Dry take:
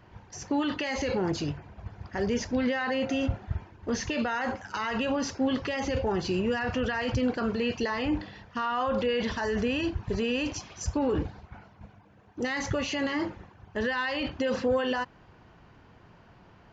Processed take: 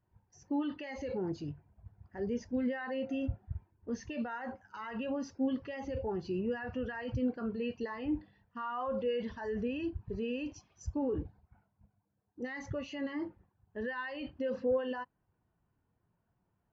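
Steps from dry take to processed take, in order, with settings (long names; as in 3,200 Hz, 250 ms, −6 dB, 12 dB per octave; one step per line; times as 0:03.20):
every bin expanded away from the loudest bin 1.5 to 1
level −5.5 dB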